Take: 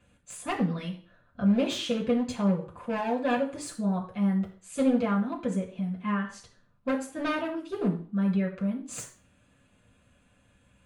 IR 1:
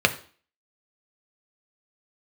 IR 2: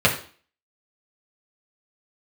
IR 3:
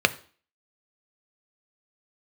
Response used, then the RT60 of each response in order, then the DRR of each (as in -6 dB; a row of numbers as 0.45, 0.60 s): 2; 0.45, 0.45, 0.45 s; 6.0, -3.5, 10.5 dB